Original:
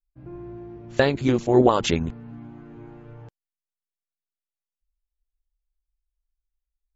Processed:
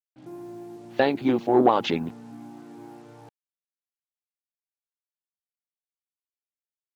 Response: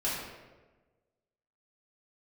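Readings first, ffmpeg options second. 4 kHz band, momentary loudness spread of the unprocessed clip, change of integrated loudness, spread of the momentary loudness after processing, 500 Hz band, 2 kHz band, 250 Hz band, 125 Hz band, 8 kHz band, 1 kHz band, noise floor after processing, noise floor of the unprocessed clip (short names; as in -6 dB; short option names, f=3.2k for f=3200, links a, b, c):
-3.5 dB, 22 LU, -1.5 dB, 22 LU, -2.0 dB, -3.0 dB, -1.5 dB, -10.0 dB, n/a, +2.0 dB, under -85 dBFS, under -85 dBFS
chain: -af "acontrast=65,highpass=f=130:w=0.5412,highpass=f=130:w=1.3066,equalizer=f=140:t=q:w=4:g=-8,equalizer=f=290:t=q:w=4:g=4,equalizer=f=800:t=q:w=4:g=9,lowpass=f=4.4k:w=0.5412,lowpass=f=4.4k:w=1.3066,acrusher=bits=7:mix=0:aa=0.5,volume=-8.5dB"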